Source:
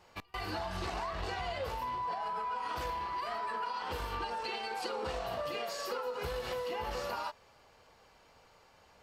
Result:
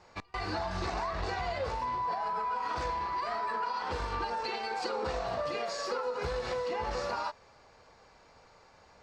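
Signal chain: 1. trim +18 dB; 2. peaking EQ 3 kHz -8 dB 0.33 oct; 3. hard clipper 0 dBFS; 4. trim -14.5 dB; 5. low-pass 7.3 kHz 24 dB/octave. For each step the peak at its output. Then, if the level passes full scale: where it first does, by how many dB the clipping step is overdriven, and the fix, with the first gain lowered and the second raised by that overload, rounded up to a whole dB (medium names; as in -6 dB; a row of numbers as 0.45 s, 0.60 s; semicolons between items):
-6.0 dBFS, -6.0 dBFS, -6.0 dBFS, -20.5 dBFS, -21.0 dBFS; nothing clips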